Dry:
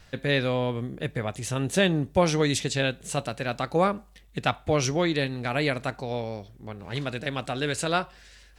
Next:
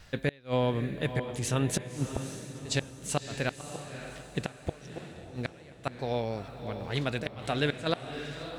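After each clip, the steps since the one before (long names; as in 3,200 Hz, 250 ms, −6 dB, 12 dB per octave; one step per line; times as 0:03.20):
gate with flip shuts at −16 dBFS, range −31 dB
feedback delay with all-pass diffusion 592 ms, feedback 41%, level −9 dB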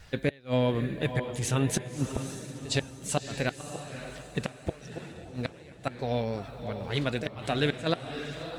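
spectral magnitudes quantised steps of 15 dB
level +2 dB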